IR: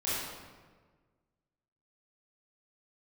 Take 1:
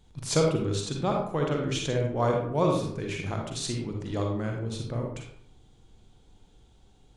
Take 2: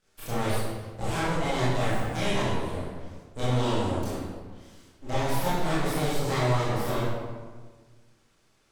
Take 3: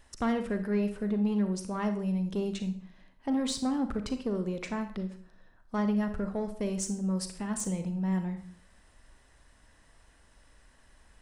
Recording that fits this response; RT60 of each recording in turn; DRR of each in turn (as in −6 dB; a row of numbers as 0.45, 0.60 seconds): 2; 0.65, 1.5, 0.50 seconds; 0.5, −11.0, 8.0 decibels